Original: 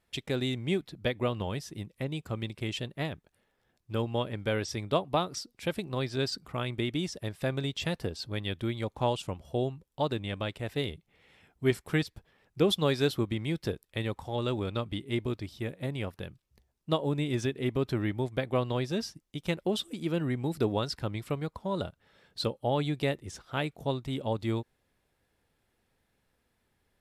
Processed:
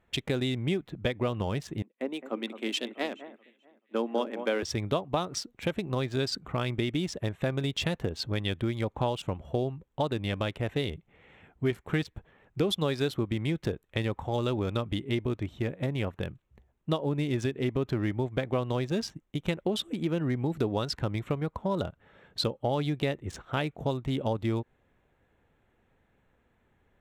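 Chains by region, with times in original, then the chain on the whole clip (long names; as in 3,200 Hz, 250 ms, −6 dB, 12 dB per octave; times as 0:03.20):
0:01.82–0:04.63: elliptic high-pass filter 230 Hz, stop band 50 dB + delay that swaps between a low-pass and a high-pass 216 ms, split 1,900 Hz, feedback 66%, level −10.5 dB + multiband upward and downward expander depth 70%
whole clip: adaptive Wiener filter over 9 samples; downward compressor 3 to 1, threshold −34 dBFS; level +7 dB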